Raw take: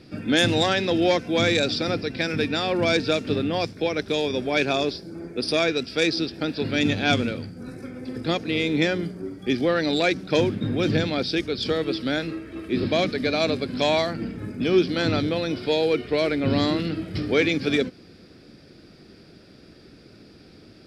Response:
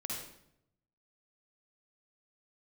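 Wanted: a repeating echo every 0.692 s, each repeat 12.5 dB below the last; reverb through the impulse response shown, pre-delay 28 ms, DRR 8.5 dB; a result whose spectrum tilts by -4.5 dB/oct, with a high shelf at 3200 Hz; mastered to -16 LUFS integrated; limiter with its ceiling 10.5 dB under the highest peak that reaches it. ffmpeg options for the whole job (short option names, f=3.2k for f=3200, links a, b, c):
-filter_complex "[0:a]highshelf=f=3.2k:g=-3,alimiter=limit=-18.5dB:level=0:latency=1,aecho=1:1:692|1384|2076:0.237|0.0569|0.0137,asplit=2[a][b];[1:a]atrim=start_sample=2205,adelay=28[c];[b][c]afir=irnorm=-1:irlink=0,volume=-9.5dB[d];[a][d]amix=inputs=2:normalize=0,volume=11.5dB"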